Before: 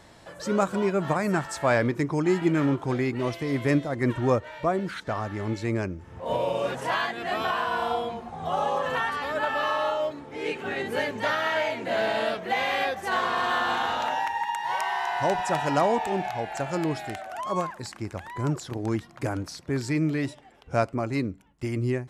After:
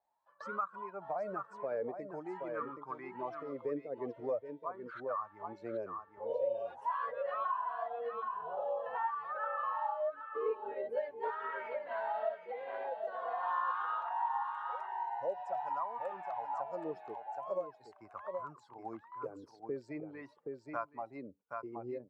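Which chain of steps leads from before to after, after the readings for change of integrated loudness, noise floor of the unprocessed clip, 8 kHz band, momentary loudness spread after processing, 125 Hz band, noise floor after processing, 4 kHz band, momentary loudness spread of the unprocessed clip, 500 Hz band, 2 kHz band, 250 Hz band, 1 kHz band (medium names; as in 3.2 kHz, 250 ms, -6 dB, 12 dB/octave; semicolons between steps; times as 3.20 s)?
-12.0 dB, -50 dBFS, under -30 dB, 10 LU, under -25 dB, -64 dBFS, under -25 dB, 8 LU, -10.5 dB, -17.5 dB, -20.5 dB, -9.0 dB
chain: expander on every frequency bin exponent 1.5; gate with hold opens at -40 dBFS; dynamic bell 1.7 kHz, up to +4 dB, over -41 dBFS, Q 1.4; in parallel at +1.5 dB: peak limiter -22.5 dBFS, peak gain reduction 10.5 dB; on the sum: random-step tremolo; wah-wah 0.45 Hz 440–1200 Hz, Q 8.7; on a send: delay 773 ms -9 dB; on the sum: three bands compressed up and down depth 70%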